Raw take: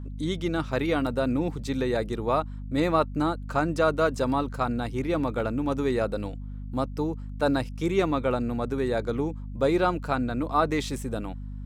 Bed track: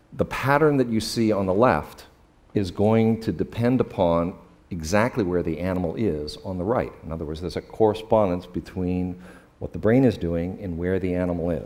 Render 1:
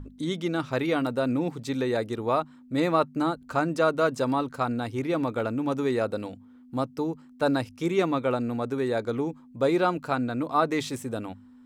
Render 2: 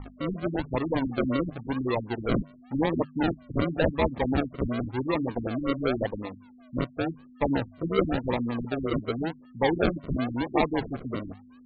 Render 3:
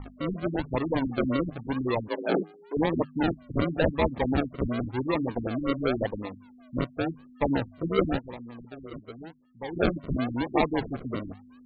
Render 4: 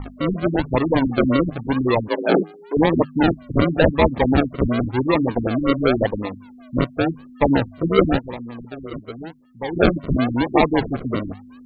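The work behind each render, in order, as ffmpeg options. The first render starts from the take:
ffmpeg -i in.wav -af "bandreject=frequency=50:width_type=h:width=6,bandreject=frequency=100:width_type=h:width=6,bandreject=frequency=150:width_type=h:width=6,bandreject=frequency=200:width_type=h:width=6" out.wav
ffmpeg -i in.wav -af "acrusher=samples=41:mix=1:aa=0.000001:lfo=1:lforange=24.6:lforate=0.92,afftfilt=real='re*lt(b*sr/1024,280*pow(4700/280,0.5+0.5*sin(2*PI*5.3*pts/sr)))':imag='im*lt(b*sr/1024,280*pow(4700/280,0.5+0.5*sin(2*PI*5.3*pts/sr)))':win_size=1024:overlap=0.75" out.wav
ffmpeg -i in.wav -filter_complex "[0:a]asettb=1/sr,asplit=3[link_01][link_02][link_03];[link_01]atrim=end=2.084[link_04];[link_02]atrim=start=2.08:end=2.77,asetpts=PTS-STARTPTS,afade=type=in:duration=0.004:curve=qsin,afade=type=out:start_time=0.686:duration=0.004:curve=qsin,afreqshift=160[link_05];[link_03]atrim=start=2.766[link_06];[link_04][link_05]acrossfade=duration=0.004:curve1=hsin:curve2=qsin[link_07];[link_07][link_06]acrossfade=duration=0.004:curve1=qsin:curve2=hsin,asplit=3[link_08][link_09][link_10];[link_08]atrim=end=8.37,asetpts=PTS-STARTPTS,afade=type=out:start_time=8.17:duration=0.2:curve=exp:silence=0.223872[link_11];[link_09]atrim=start=8.37:end=9.57,asetpts=PTS-STARTPTS,volume=-13dB[link_12];[link_10]atrim=start=9.57,asetpts=PTS-STARTPTS,afade=type=in:duration=0.2:curve=exp:silence=0.223872[link_13];[link_11][link_12][link_13]concat=n=3:v=0:a=1" out.wav
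ffmpeg -i in.wav -af "volume=9dB,alimiter=limit=-3dB:level=0:latency=1" out.wav

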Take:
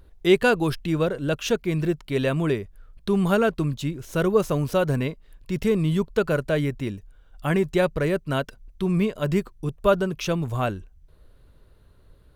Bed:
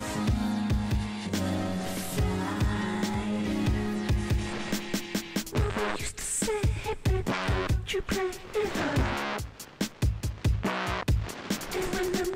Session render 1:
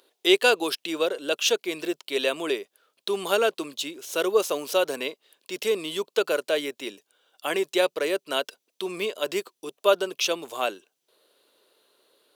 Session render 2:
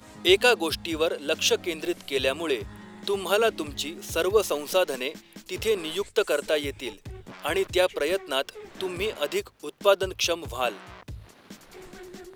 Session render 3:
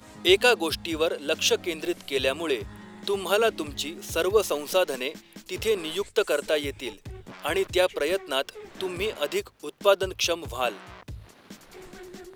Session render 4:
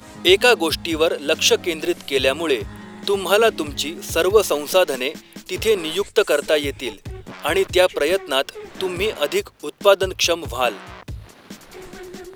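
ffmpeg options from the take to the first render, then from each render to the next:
ffmpeg -i in.wav -af "highpass=frequency=360:width=0.5412,highpass=frequency=360:width=1.3066,highshelf=frequency=2400:width_type=q:width=1.5:gain=6.5" out.wav
ffmpeg -i in.wav -i bed.wav -filter_complex "[1:a]volume=-14.5dB[link_01];[0:a][link_01]amix=inputs=2:normalize=0" out.wav
ffmpeg -i in.wav -af anull out.wav
ffmpeg -i in.wav -af "volume=7dB,alimiter=limit=-2dB:level=0:latency=1" out.wav

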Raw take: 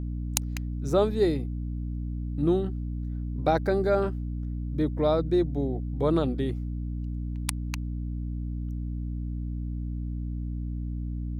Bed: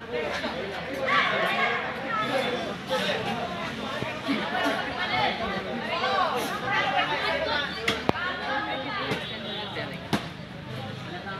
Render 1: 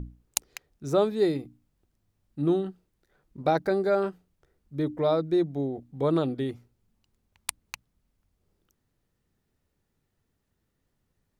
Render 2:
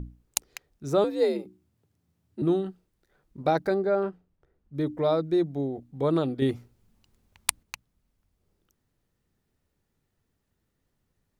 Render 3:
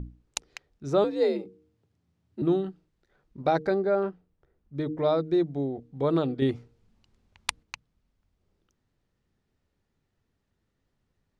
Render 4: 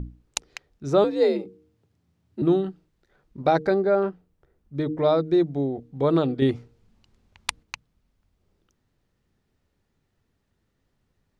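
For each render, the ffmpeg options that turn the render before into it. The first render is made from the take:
ffmpeg -i in.wav -af "bandreject=frequency=60:width_type=h:width=6,bandreject=frequency=120:width_type=h:width=6,bandreject=frequency=180:width_type=h:width=6,bandreject=frequency=240:width_type=h:width=6,bandreject=frequency=300:width_type=h:width=6" out.wav
ffmpeg -i in.wav -filter_complex "[0:a]asettb=1/sr,asplit=3[link_01][link_02][link_03];[link_01]atrim=end=1.044[link_04];[link_02]atrim=start=1.04:end=2.42,asetpts=PTS-STARTPTS,afade=type=in:duration=0.004:curve=qsin,afade=type=out:start_time=1.376:duration=0.004:curve=qsin,afreqshift=67[link_05];[link_03]atrim=start=2.416[link_06];[link_04][link_05]acrossfade=duration=0.004:curve1=hsin:curve2=qsin[link_07];[link_07][link_06]acrossfade=duration=0.004:curve1=qsin:curve2=hsin,asettb=1/sr,asplit=3[link_08][link_09][link_10];[link_08]atrim=end=3.744[link_11];[link_09]atrim=start=3.74:end=4.75,asetpts=PTS-STARTPTS,afade=type=in:duration=0.004:curve=qsin,afade=type=out:start_time=1.006:duration=0.004:curve=qsin,lowpass=frequency=1500:poles=1[link_12];[link_10]atrim=start=4.746[link_13];[link_11][link_12]acrossfade=duration=0.004:curve1=hsin:curve2=qsin[link_14];[link_14][link_13]acrossfade=duration=0.004:curve1=qsin:curve2=hsin,asplit=3[link_15][link_16][link_17];[link_15]atrim=end=6.422[link_18];[link_16]atrim=start=6.418:end=7.632,asetpts=PTS-STARTPTS,volume=6.5dB[link_19];[link_17]atrim=start=7.628[link_20];[link_18][link_19]acrossfade=duration=0.004:curve1=hsin:curve2=hsin[link_21];[link_21][link_20]acrossfade=duration=0.004:curve1=hsin:curve2=hsin" out.wav
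ffmpeg -i in.wav -af "lowpass=5700,bandreject=frequency=154.9:width_type=h:width=4,bandreject=frequency=309.8:width_type=h:width=4,bandreject=frequency=464.7:width_type=h:width=4" out.wav
ffmpeg -i in.wav -af "volume=4dB,alimiter=limit=-2dB:level=0:latency=1" out.wav

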